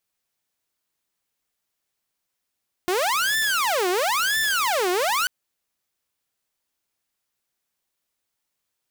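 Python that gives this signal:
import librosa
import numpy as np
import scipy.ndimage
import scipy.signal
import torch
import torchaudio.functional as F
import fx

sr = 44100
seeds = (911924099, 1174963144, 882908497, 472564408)

y = fx.siren(sr, length_s=2.39, kind='wail', low_hz=355.0, high_hz=1770.0, per_s=0.99, wave='saw', level_db=-17.5)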